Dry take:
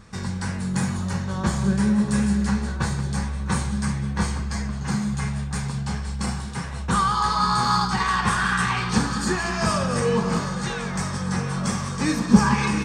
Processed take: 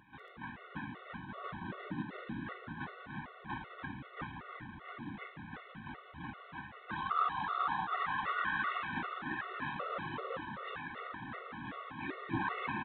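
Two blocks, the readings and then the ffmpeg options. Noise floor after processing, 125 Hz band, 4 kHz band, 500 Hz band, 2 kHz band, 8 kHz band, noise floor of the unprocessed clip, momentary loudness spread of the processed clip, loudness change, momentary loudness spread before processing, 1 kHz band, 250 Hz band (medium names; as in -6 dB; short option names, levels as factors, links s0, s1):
-55 dBFS, -24.5 dB, -19.5 dB, -18.0 dB, -11.5 dB, under -40 dB, -30 dBFS, 14 LU, -16.5 dB, 8 LU, -12.5 dB, -22.0 dB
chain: -af "lowpass=1400,lowshelf=f=140:g=6,bandreject=f=670:w=12,bandreject=f=114.4:t=h:w=4,bandreject=f=228.8:t=h:w=4,bandreject=f=343.2:t=h:w=4,bandreject=f=457.6:t=h:w=4,bandreject=f=572:t=h:w=4,bandreject=f=686.4:t=h:w=4,bandreject=f=800.8:t=h:w=4,bandreject=f=915.2:t=h:w=4,bandreject=f=1029.6:t=h:w=4,bandreject=f=1144:t=h:w=4,bandreject=f=1258.4:t=h:w=4,bandreject=f=1372.8:t=h:w=4,bandreject=f=1487.2:t=h:w=4,bandreject=f=1601.6:t=h:w=4,bandreject=f=1716:t=h:w=4,bandreject=f=1830.4:t=h:w=4,bandreject=f=1944.8:t=h:w=4,bandreject=f=2059.2:t=h:w=4,bandreject=f=2173.6:t=h:w=4,bandreject=f=2288:t=h:w=4,bandreject=f=2402.4:t=h:w=4,bandreject=f=2516.8:t=h:w=4,bandreject=f=2631.2:t=h:w=4,bandreject=f=2745.6:t=h:w=4,bandreject=f=2860:t=h:w=4,bandreject=f=2974.4:t=h:w=4,bandreject=f=3088.8:t=h:w=4,bandreject=f=3203.2:t=h:w=4,bandreject=f=3317.6:t=h:w=4,bandreject=f=3432:t=h:w=4,bandreject=f=3546.4:t=h:w=4,bandreject=f=3660.8:t=h:w=4,bandreject=f=3775.2:t=h:w=4,bandreject=f=3889.6:t=h:w=4,afftfilt=real='hypot(re,im)*cos(2*PI*random(0))':imag='hypot(re,im)*sin(2*PI*random(1))':win_size=512:overlap=0.75,acompressor=mode=upward:threshold=0.00891:ratio=2.5,aderivative,aresample=8000,acrusher=bits=4:mode=log:mix=0:aa=0.000001,aresample=44100,aecho=1:1:204.1|288.6:0.316|0.398,afftfilt=real='re*gt(sin(2*PI*2.6*pts/sr)*(1-2*mod(floor(b*sr/1024/370),2)),0)':imag='im*gt(sin(2*PI*2.6*pts/sr)*(1-2*mod(floor(b*sr/1024/370),2)),0)':win_size=1024:overlap=0.75,volume=5.31"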